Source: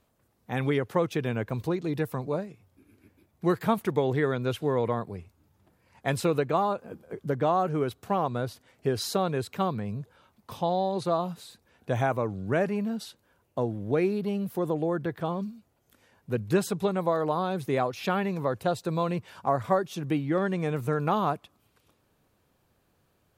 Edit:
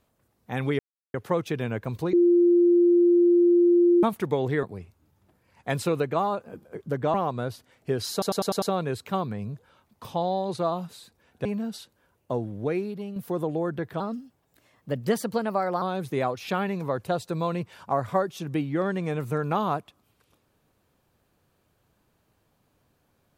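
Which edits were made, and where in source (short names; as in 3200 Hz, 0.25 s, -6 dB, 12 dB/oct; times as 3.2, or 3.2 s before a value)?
0.79 insert silence 0.35 s
1.78–3.68 bleep 348 Hz -15 dBFS
4.28–5.01 cut
7.52–8.11 cut
9.09 stutter 0.10 s, 6 plays
11.92–12.72 cut
13.69–14.43 fade out, to -7.5 dB
15.27–17.38 speed 116%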